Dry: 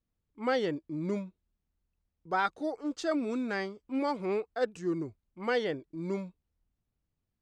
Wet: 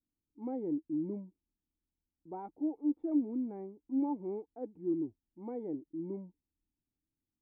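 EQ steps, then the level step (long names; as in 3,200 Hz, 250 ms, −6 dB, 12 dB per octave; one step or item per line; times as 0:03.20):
formant resonators in series u
+3.5 dB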